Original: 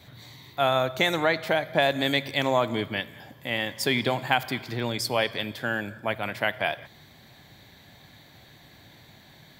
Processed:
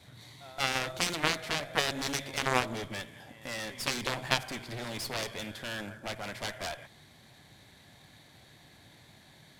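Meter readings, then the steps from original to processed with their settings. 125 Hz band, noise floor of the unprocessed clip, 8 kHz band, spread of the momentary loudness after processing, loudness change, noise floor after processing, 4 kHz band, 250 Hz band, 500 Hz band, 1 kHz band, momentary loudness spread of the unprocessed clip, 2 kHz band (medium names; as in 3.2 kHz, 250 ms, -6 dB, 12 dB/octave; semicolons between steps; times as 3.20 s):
-7.0 dB, -53 dBFS, +3.5 dB, 11 LU, -7.0 dB, -58 dBFS, -4.5 dB, -9.0 dB, -11.5 dB, -7.5 dB, 8 LU, -6.5 dB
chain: CVSD coder 64 kbps; in parallel at -3 dB: saturation -20.5 dBFS, distortion -12 dB; on the sum: pre-echo 177 ms -21 dB; Chebyshev shaper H 2 -15 dB, 3 -7 dB, 8 -27 dB, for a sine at -8 dBFS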